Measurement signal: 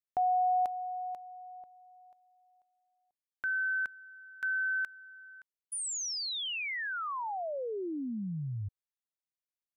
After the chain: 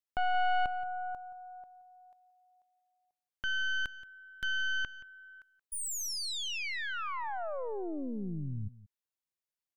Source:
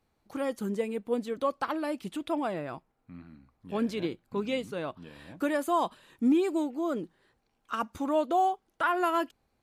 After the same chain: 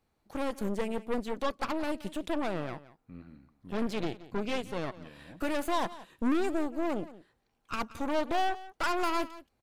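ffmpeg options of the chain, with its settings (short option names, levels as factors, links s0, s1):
-af "aeval=exprs='0.141*(cos(1*acos(clip(val(0)/0.141,-1,1)))-cos(1*PI/2))+0.0562*(cos(2*acos(clip(val(0)/0.141,-1,1)))-cos(2*PI/2))+0.0631*(cos(4*acos(clip(val(0)/0.141,-1,1)))-cos(4*PI/2))+0.01*(cos(6*acos(clip(val(0)/0.141,-1,1)))-cos(6*PI/2))+0.0126*(cos(8*acos(clip(val(0)/0.141,-1,1)))-cos(8*PI/2))':c=same,asoftclip=type=tanh:threshold=0.106,aecho=1:1:176:0.141,volume=0.841"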